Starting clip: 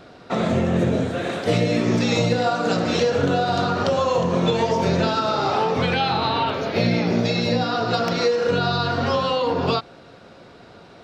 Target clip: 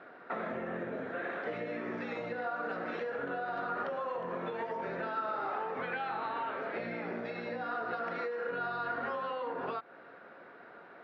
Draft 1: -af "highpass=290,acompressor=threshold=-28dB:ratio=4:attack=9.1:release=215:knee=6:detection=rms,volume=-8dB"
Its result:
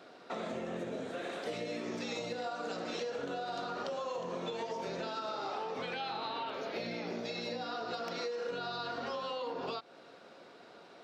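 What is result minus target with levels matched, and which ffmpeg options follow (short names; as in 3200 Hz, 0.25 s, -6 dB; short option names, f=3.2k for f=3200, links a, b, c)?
2000 Hz band -4.0 dB
-af "highpass=290,acompressor=threshold=-28dB:ratio=4:attack=9.1:release=215:knee=6:detection=rms,lowpass=f=1.7k:t=q:w=2.5,volume=-8dB"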